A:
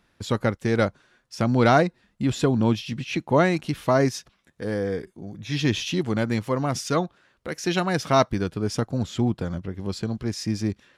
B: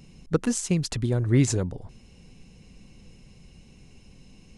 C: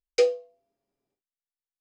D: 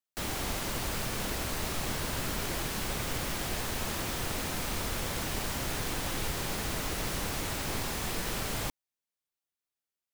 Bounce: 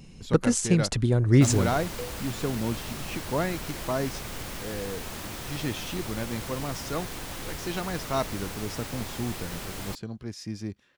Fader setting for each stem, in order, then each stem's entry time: -9.0 dB, +2.0 dB, -17.0 dB, -3.5 dB; 0.00 s, 0.00 s, 1.80 s, 1.25 s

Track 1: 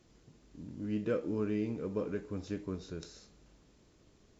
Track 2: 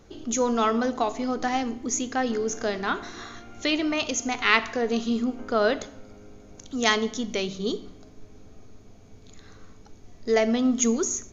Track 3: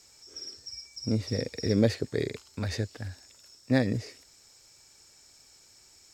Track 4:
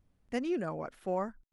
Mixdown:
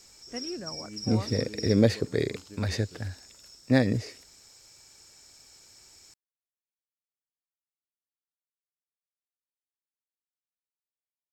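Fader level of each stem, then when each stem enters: -9.5 dB, mute, +2.5 dB, -5.0 dB; 0.00 s, mute, 0.00 s, 0.00 s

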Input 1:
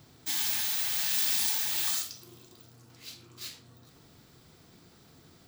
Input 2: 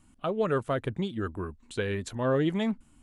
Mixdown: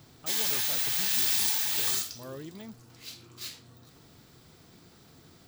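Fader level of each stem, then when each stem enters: +1.5 dB, -16.5 dB; 0.00 s, 0.00 s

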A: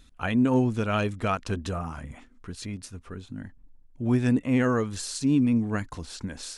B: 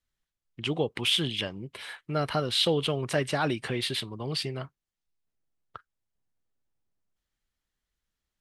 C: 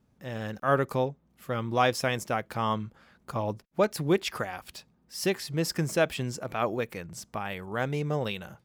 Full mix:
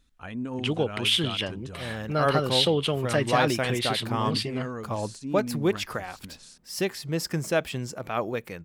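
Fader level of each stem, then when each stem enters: -11.0 dB, +2.0 dB, 0.0 dB; 0.00 s, 0.00 s, 1.55 s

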